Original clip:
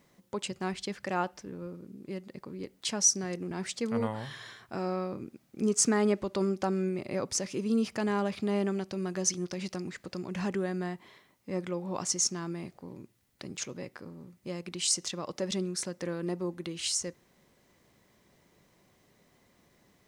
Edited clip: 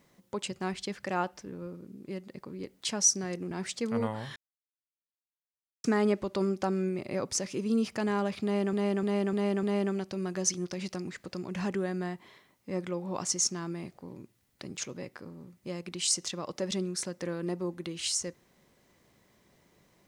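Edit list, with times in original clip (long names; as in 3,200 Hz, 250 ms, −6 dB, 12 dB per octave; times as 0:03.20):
0:04.36–0:05.84: silence
0:08.43–0:08.73: repeat, 5 plays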